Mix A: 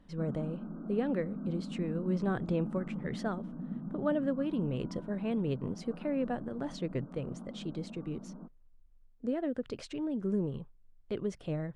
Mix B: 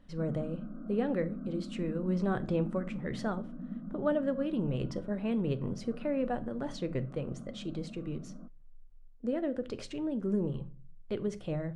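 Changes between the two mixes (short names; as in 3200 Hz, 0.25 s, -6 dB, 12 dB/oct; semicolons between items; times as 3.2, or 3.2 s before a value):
background: add fixed phaser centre 590 Hz, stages 8; reverb: on, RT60 0.40 s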